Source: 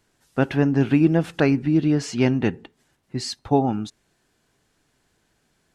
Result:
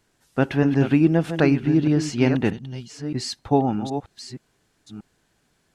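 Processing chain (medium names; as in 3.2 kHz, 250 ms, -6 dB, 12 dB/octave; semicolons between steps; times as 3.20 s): chunks repeated in reverse 626 ms, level -9 dB; time-frequency box 2.52–2.90 s, 230–2800 Hz -11 dB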